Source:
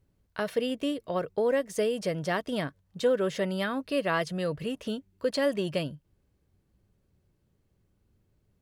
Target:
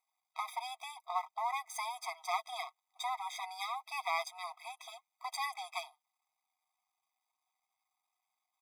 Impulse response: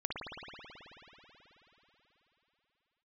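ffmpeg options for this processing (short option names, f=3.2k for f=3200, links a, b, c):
-af "aeval=exprs='if(lt(val(0),0),0.251*val(0),val(0))':c=same,aecho=1:1:6.5:0.36,afftfilt=real='re*eq(mod(floor(b*sr/1024/650),2),1)':imag='im*eq(mod(floor(b*sr/1024/650),2),1)':win_size=1024:overlap=0.75,volume=2.5dB"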